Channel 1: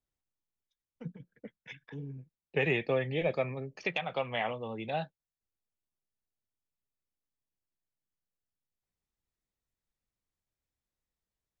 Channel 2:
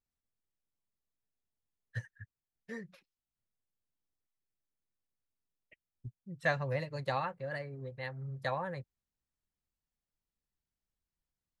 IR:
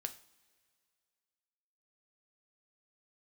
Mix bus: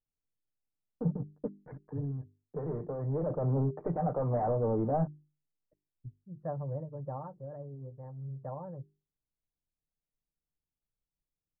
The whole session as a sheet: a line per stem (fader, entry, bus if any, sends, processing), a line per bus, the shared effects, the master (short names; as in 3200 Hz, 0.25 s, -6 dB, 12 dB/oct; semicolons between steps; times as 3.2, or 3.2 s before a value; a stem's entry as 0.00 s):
-4.5 dB, 0.00 s, no send, sample leveller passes 5; auto duck -8 dB, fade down 0.20 s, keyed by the second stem
-1.0 dB, 0.00 s, no send, LPF 1500 Hz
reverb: off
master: Gaussian blur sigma 10 samples; notches 50/100/150/200/250/300/350/400 Hz; comb 6.7 ms, depth 32%